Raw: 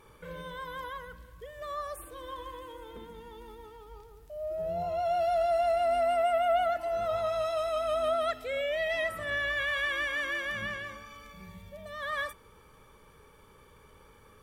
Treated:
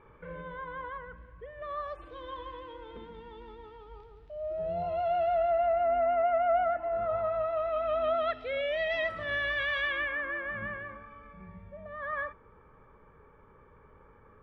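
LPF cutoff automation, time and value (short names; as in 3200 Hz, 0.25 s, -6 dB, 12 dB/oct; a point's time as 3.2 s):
LPF 24 dB/oct
1.49 s 2300 Hz
2 s 3800 Hz
4.8 s 3800 Hz
5.81 s 2000 Hz
7.48 s 2000 Hz
8.69 s 4500 Hz
9.79 s 4500 Hz
10.22 s 1900 Hz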